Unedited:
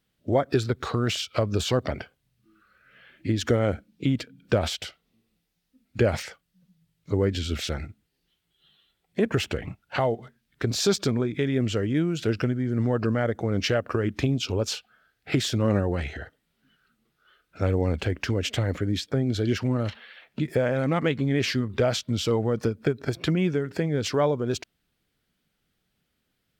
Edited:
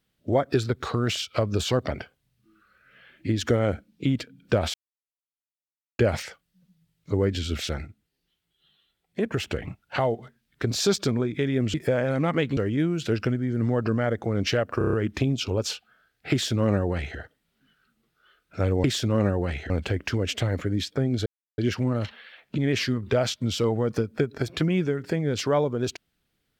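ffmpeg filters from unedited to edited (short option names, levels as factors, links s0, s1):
-filter_complex "[0:a]asplit=16[s0][s1][s2][s3][s4][s5][s6][s7][s8][s9][s10][s11][s12][s13][s14][s15];[s0]atrim=end=4.74,asetpts=PTS-STARTPTS,afade=t=out:st=4.736:d=0.004:c=hsin[s16];[s1]atrim=start=4.74:end=5.99,asetpts=PTS-STARTPTS,volume=0[s17];[s2]atrim=start=5.99:end=7.822,asetpts=PTS-STARTPTS,afade=t=in:d=0.004:c=hsin[s18];[s3]atrim=start=7.818:end=9.472,asetpts=PTS-STARTPTS,volume=0.708[s19];[s4]atrim=start=9.468:end=11.742[s20];[s5]atrim=start=20.418:end=21.252[s21];[s6]atrim=start=11.738:end=13.982[s22];[s7]atrim=start=13.948:end=13.982[s23];[s8]atrim=start=13.948:end=13.982[s24];[s9]atrim=start=13.948:end=13.982[s25];[s10]atrim=start=13.948:end=13.982[s26];[s11]atrim=start=13.948:end=17.862[s27];[s12]atrim=start=15.338:end=16.202[s28];[s13]atrim=start=17.858:end=19.42,asetpts=PTS-STARTPTS,afade=t=out:st=1.558:d=0.004:c=hsin,apad=pad_dur=0.32[s29];[s14]atrim=start=19.42:end=20.422,asetpts=PTS-STARTPTS,afade=t=in:d=0.004:c=hsin[s30];[s15]atrim=start=21.248[s31];[s16][s17][s18]concat=n=3:v=0:a=1[s32];[s32][s19]acrossfade=d=0.004:c1=hsin:c2=hsin[s33];[s33][s20]acrossfade=d=0.004:c1=hsin:c2=hsin[s34];[s34][s21]acrossfade=d=0.004:c1=hsin:c2=hsin[s35];[s35][s22]acrossfade=d=0.004:c1=hsin:c2=hsin[s36];[s36][s23]acrossfade=d=0.004:c1=hsin:c2=hsin[s37];[s37][s24]acrossfade=d=0.004:c1=hsin:c2=hsin[s38];[s38][s25]acrossfade=d=0.004:c1=hsin:c2=hsin[s39];[s39][s26]acrossfade=d=0.004:c1=hsin:c2=hsin[s40];[s40][s27]acrossfade=d=0.004:c1=hsin:c2=hsin[s41];[s41][s28]acrossfade=d=0.004:c1=hsin:c2=hsin[s42];[s29][s30]concat=n=2:v=0:a=1[s43];[s42][s43]acrossfade=d=0.004:c1=hsin:c2=hsin[s44];[s44][s31]acrossfade=d=0.004:c1=hsin:c2=hsin"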